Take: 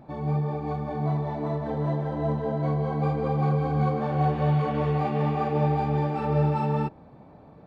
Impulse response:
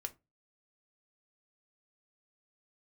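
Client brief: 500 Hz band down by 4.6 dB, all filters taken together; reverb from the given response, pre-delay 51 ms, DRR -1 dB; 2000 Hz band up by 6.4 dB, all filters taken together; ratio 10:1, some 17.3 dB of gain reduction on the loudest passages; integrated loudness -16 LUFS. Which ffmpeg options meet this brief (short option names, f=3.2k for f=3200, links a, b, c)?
-filter_complex "[0:a]equalizer=f=500:t=o:g=-6,equalizer=f=2k:t=o:g=8.5,acompressor=threshold=-38dB:ratio=10,asplit=2[a][b];[1:a]atrim=start_sample=2205,adelay=51[c];[b][c]afir=irnorm=-1:irlink=0,volume=3dB[d];[a][d]amix=inputs=2:normalize=0,volume=24.5dB"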